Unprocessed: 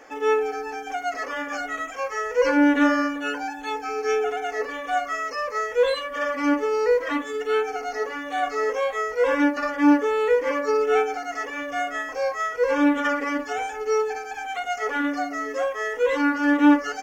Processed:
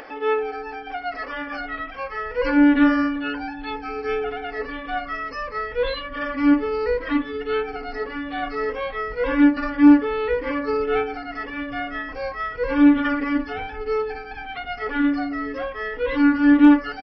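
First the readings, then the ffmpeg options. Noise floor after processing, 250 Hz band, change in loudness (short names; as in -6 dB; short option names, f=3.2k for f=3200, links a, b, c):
-36 dBFS, +5.0 dB, +1.5 dB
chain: -af "aresample=11025,aresample=44100,asubboost=boost=9.5:cutoff=180,acompressor=mode=upward:threshold=-33dB:ratio=2.5"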